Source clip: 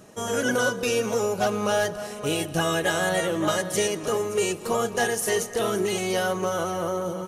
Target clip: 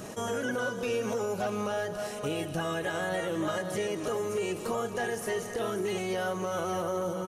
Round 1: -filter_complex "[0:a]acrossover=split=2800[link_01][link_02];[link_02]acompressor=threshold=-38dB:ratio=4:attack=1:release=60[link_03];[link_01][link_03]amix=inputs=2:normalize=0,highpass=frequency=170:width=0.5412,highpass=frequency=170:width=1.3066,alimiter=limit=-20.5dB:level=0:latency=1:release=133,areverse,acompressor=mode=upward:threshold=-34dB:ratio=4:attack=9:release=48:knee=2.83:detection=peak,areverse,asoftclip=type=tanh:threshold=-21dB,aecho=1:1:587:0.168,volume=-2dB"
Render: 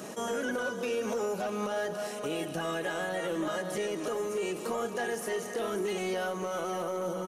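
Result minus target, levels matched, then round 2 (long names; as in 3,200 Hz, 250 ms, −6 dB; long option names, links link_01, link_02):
soft clipping: distortion +13 dB; 125 Hz band −4.5 dB
-filter_complex "[0:a]acrossover=split=2800[link_01][link_02];[link_02]acompressor=threshold=-38dB:ratio=4:attack=1:release=60[link_03];[link_01][link_03]amix=inputs=2:normalize=0,alimiter=limit=-20.5dB:level=0:latency=1:release=133,areverse,acompressor=mode=upward:threshold=-34dB:ratio=4:attack=9:release=48:knee=2.83:detection=peak,areverse,asoftclip=type=tanh:threshold=-13.5dB,aecho=1:1:587:0.168,volume=-2dB"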